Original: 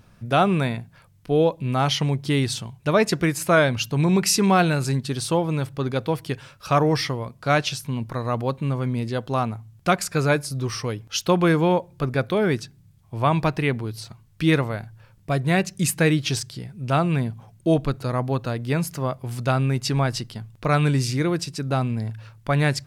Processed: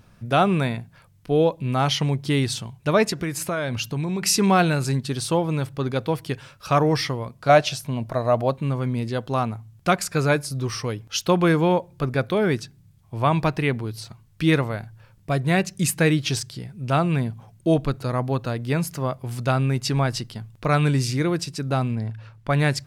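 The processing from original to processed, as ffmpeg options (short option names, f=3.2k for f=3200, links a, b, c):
-filter_complex "[0:a]asettb=1/sr,asplit=3[a][b][c];[a]atrim=end=3.104[d];[b]atrim=start=3.1:end=4.23,asetpts=PTS-STARTPTS,afade=t=in:d=0.004:c=qsin,afade=t=out:st=1.126:d=0.004:c=qsin,acompressor=threshold=-22dB:ratio=6:attack=3.2:release=140:knee=1:detection=peak[e];[c]atrim=start=4.226[f];[d][e]acrossfade=d=0.004:c1=hsin:c2=qsin[g];[g][f]acrossfade=d=0.004:c1=qsin:c2=hsin,asettb=1/sr,asplit=3[h][i][j];[h]atrim=end=7.494[k];[i]atrim=start=7.49:end=8.54,asetpts=PTS-STARTPTS,afade=t=in:d=0.004:c=qsin,afade=t=out:st=1.046:d=0.004:c=qsin,equalizer=f=650:w=4.5:g=14.5[l];[j]atrim=start=8.536[m];[k][l]acrossfade=d=0.004:c1=hsin:c2=qsin[n];[n][m]acrossfade=d=0.004:c1=qsin:c2=hsin,asettb=1/sr,asplit=3[o][p][q];[o]atrim=end=21.954[r];[p]atrim=start=21.95:end=22.5,asetpts=PTS-STARTPTS,afade=t=in:d=0.004:c=qsin,afade=t=out:st=0.546:d=0.004:c=qsin,lowpass=f=3.6k:p=1[s];[q]atrim=start=22.496[t];[r][s]acrossfade=d=0.004:c1=hsin:c2=qsin[u];[u][t]acrossfade=d=0.004:c1=qsin:c2=hsin"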